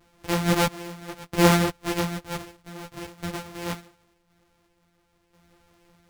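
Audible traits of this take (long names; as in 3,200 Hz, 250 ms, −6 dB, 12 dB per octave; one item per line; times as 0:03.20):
a buzz of ramps at a fixed pitch in blocks of 256 samples
sample-and-hold tremolo 1.5 Hz, depth 80%
a shimmering, thickened sound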